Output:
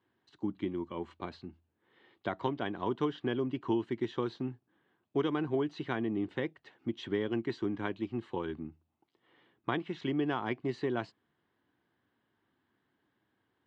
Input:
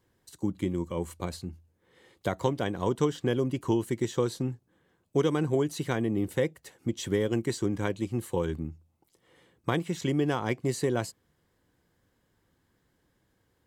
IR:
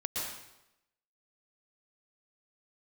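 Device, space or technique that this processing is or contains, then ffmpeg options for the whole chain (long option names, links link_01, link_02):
kitchen radio: -af "highpass=170,equalizer=frequency=170:width_type=q:width=4:gain=-7,equalizer=frequency=510:width_type=q:width=4:gain=-10,equalizer=frequency=2200:width_type=q:width=4:gain=-3,lowpass=frequency=3500:width=0.5412,lowpass=frequency=3500:width=1.3066,volume=-2dB"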